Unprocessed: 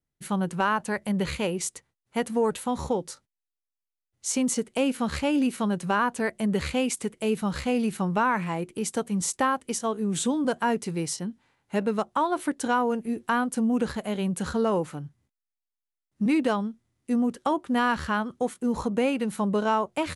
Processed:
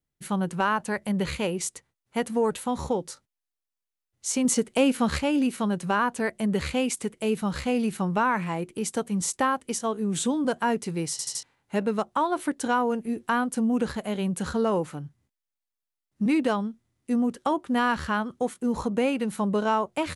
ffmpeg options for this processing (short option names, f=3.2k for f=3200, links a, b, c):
-filter_complex "[0:a]asplit=7[a][b][c][d][e][f][g];[a]atrim=end=4.452[h];[b]atrim=start=4.448:end=5.182,asetpts=PTS-STARTPTS,volume=3.5dB[i];[c]atrim=start=5.178:end=11.192[j];[d]atrim=start=11.108:end=11.192[k];[e]atrim=start=11.108:end=11.192[l];[f]atrim=start=11.108:end=11.192[m];[g]atrim=start=11.428[n];[h][i]acrossfade=d=0.004:c1=hsin:c2=hsin[o];[o][j]acrossfade=d=0.004:c1=hsin:c2=hsin[p];[p][k]acrossfade=d=0.004:c1=hsin:c2=hsin[q];[q][l]acrossfade=d=0.004:c1=hsin:c2=hsin[r];[r][m]acrossfade=d=0.004:c1=hsin:c2=hsin[s];[s][n]acrossfade=d=0.004:c1=hsin:c2=hsin"